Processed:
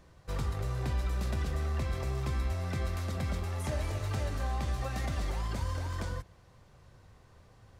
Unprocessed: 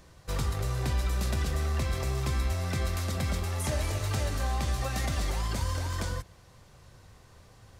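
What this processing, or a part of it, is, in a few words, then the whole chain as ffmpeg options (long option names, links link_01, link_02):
behind a face mask: -af "highshelf=frequency=3400:gain=-8,volume=-3dB"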